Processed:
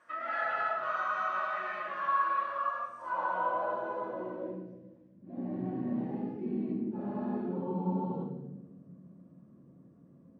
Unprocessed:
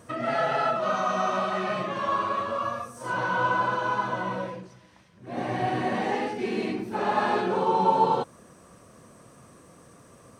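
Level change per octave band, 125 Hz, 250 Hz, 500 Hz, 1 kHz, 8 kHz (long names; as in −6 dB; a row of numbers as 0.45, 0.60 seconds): −4.5 dB, −2.5 dB, −10.0 dB, −8.0 dB, can't be measured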